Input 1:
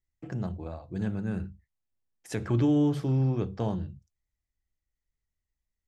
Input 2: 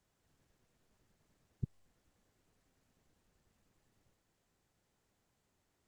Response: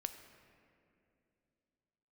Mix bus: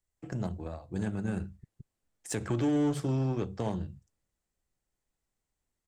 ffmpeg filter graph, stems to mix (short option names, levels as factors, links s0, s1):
-filter_complex "[0:a]equalizer=f=8100:t=o:w=0.67:g=11,acrossover=split=290[s0][s1];[s0]acompressor=threshold=0.0316:ratio=6[s2];[s2][s1]amix=inputs=2:normalize=0,aeval=exprs='0.119*(cos(1*acos(clip(val(0)/0.119,-1,1)))-cos(1*PI/2))+0.00668*(cos(7*acos(clip(val(0)/0.119,-1,1)))-cos(7*PI/2))':c=same,volume=1.19,asplit=2[s3][s4];[1:a]volume=0.447,asplit=2[s5][s6];[s6]volume=0.562[s7];[s4]apad=whole_len=259242[s8];[s5][s8]sidechaingate=range=0.398:threshold=0.00447:ratio=16:detection=peak[s9];[s7]aecho=0:1:169:1[s10];[s3][s9][s10]amix=inputs=3:normalize=0,alimiter=limit=0.0841:level=0:latency=1:release=85"